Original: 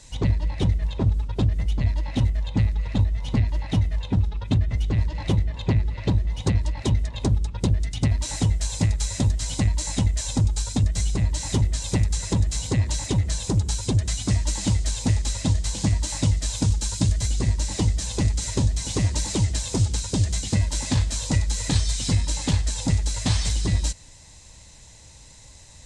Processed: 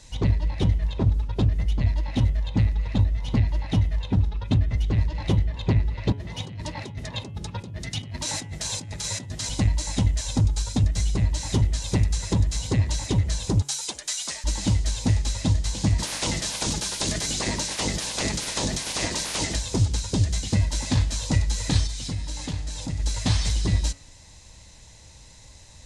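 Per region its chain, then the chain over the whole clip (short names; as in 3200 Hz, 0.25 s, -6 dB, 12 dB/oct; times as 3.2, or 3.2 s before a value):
6.12–9.49 HPF 99 Hz 24 dB/oct + negative-ratio compressor -32 dBFS + short-mantissa float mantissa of 8-bit
13.62–14.44 HPF 790 Hz + high shelf 6200 Hz +9.5 dB + frequency shift -42 Hz
15.98–19.54 spectral limiter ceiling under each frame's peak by 27 dB + compressor 2.5:1, threshold -23 dBFS
21.87–23 resonator 150 Hz, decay 1.7 s, mix 70% + fast leveller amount 50%
whole clip: bell 8000 Hz -5.5 dB 0.38 oct; de-hum 140.1 Hz, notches 24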